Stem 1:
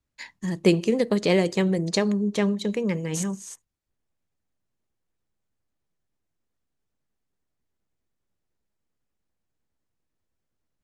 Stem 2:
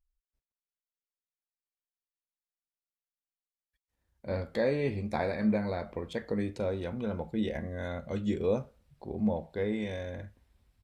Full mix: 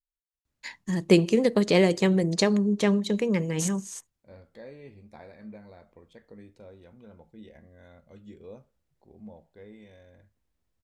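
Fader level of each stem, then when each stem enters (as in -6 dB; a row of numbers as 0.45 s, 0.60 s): +0.5 dB, -16.5 dB; 0.45 s, 0.00 s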